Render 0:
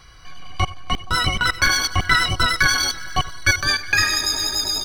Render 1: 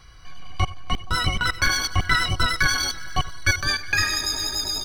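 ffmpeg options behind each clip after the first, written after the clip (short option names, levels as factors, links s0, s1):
-af "lowshelf=f=170:g=4.5,volume=0.631"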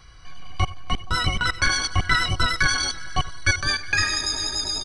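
-af "aresample=22050,aresample=44100"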